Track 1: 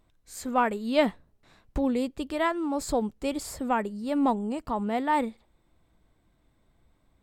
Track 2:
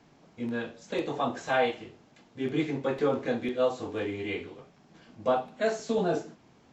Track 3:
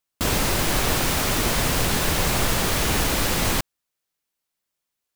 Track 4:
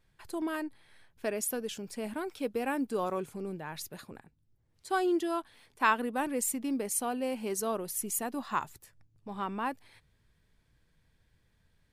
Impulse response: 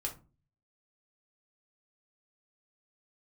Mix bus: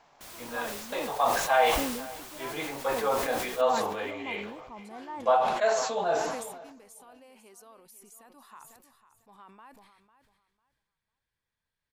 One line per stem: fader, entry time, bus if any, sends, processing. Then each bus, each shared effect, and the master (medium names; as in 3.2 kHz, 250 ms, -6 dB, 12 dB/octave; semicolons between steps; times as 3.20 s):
-18.0 dB, 0.00 s, no send, no echo send, treble shelf 5.2 kHz -11.5 dB
0.0 dB, 0.00 s, no send, echo send -20.5 dB, resonant low shelf 440 Hz -12.5 dB, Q 1.5
-18.5 dB, 0.00 s, no send, echo send -20 dB, comb 4.7 ms, depth 80%; wavefolder -23.5 dBFS
-12.0 dB, 0.00 s, no send, echo send -14 dB, bass shelf 470 Hz -11.5 dB; compression 4:1, threshold -40 dBFS, peak gain reduction 15.5 dB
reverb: none
echo: feedback delay 499 ms, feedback 22%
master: peaking EQ 1 kHz +4 dB 0.68 oct; decay stretcher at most 43 dB/s